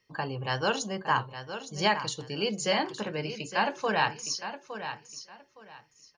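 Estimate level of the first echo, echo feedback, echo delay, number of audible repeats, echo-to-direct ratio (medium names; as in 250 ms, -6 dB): -10.5 dB, 22%, 863 ms, 2, -10.5 dB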